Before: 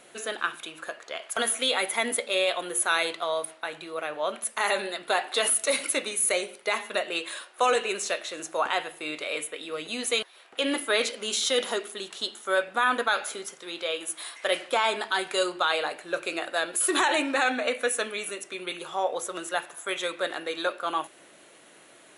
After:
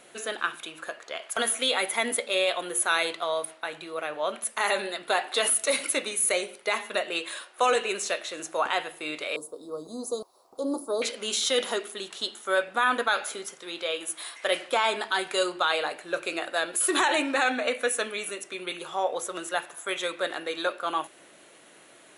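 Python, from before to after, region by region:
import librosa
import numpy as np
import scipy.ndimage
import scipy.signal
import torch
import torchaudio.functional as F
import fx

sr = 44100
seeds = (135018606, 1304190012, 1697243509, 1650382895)

y = fx.chain(x, sr, fx.ellip_bandstop(low_hz=1100.0, high_hz=4600.0, order=3, stop_db=50),
    fx.high_shelf(hz=3000.0, db=-7.0),
    fx.quant_dither(seeds[0], bits=12, dither='none'), at=(9.36, 11.02))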